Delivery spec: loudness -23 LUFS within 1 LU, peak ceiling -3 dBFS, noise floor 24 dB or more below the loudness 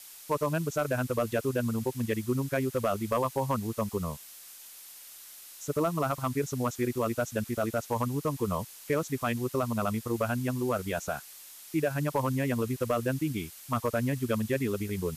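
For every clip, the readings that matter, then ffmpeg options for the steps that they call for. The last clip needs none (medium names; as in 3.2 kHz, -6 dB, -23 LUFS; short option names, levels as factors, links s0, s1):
noise floor -49 dBFS; noise floor target -55 dBFS; loudness -31.0 LUFS; peak level -17.5 dBFS; loudness target -23.0 LUFS
-> -af "afftdn=nr=6:nf=-49"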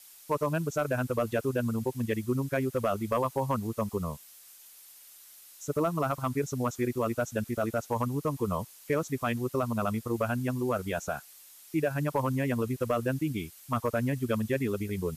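noise floor -53 dBFS; noise floor target -55 dBFS
-> -af "afftdn=nr=6:nf=-53"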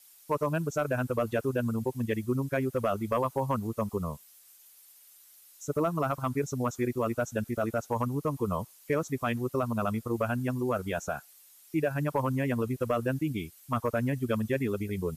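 noise floor -57 dBFS; loudness -31.0 LUFS; peak level -18.0 dBFS; loudness target -23.0 LUFS
-> -af "volume=2.51"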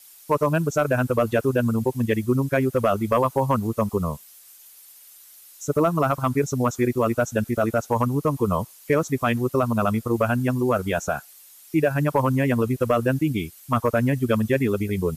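loudness -23.0 LUFS; peak level -10.0 dBFS; noise floor -49 dBFS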